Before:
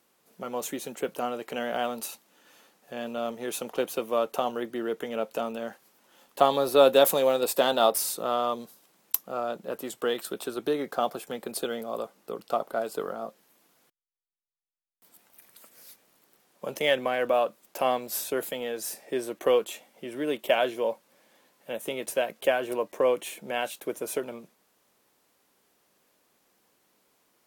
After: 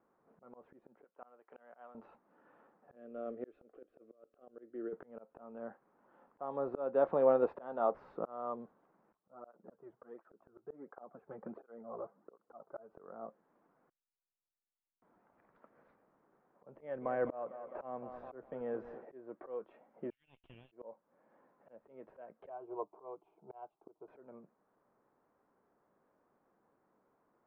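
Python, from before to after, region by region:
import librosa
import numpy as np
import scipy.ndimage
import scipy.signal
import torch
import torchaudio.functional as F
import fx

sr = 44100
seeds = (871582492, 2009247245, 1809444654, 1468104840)

y = fx.chain(x, sr, fx.highpass(hz=1100.0, slope=6),
    fx.high_shelf(hz=4900.0, db=6.5),
    fx.upward_expand(threshold_db=-50.0, expansion=1.5), at=(1.04, 1.95))
y = fx.chain(y, sr, fx.over_compress(threshold_db=-30.0, ratio=-0.5),
    fx.fixed_phaser(hz=380.0, stages=4), at=(2.95, 4.93))
y = fx.chain(y, sr, fx.lowpass(hz=2100.0, slope=12),
    fx.flanger_cancel(hz=1.4, depth_ms=4.4), at=(9.17, 12.9))
y = fx.chain(y, sr, fx.low_shelf(hz=150.0, db=10.5),
    fx.echo_thinned(ms=208, feedback_pct=58, hz=150.0, wet_db=-16), at=(16.66, 19.05))
y = fx.chain(y, sr, fx.ellip_highpass(hz=2700.0, order=4, stop_db=60),
    fx.tube_stage(drive_db=30.0, bias=0.35), at=(20.1, 20.72))
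y = fx.chain(y, sr, fx.peak_eq(hz=650.0, db=6.0, octaves=1.4),
    fx.fixed_phaser(hz=360.0, stages=8),
    fx.upward_expand(threshold_db=-42.0, expansion=1.5), at=(22.49, 24.08))
y = scipy.signal.sosfilt(scipy.signal.butter(4, 1400.0, 'lowpass', fs=sr, output='sos'), y)
y = fx.auto_swell(y, sr, attack_ms=570.0)
y = y * 10.0 ** (-3.0 / 20.0)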